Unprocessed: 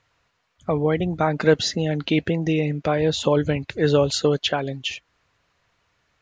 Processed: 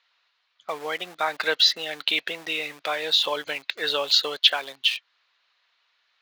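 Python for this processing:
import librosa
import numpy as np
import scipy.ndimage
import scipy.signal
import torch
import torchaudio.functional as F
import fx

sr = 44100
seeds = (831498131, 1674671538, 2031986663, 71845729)

p1 = fx.lowpass_res(x, sr, hz=4000.0, q=2.8)
p2 = np.where(np.abs(p1) >= 10.0 ** (-26.5 / 20.0), p1, 0.0)
p3 = p1 + (p2 * 10.0 ** (-7.0 / 20.0))
p4 = scipy.signal.sosfilt(scipy.signal.butter(2, 950.0, 'highpass', fs=sr, output='sos'), p3)
y = p4 * 10.0 ** (-2.5 / 20.0)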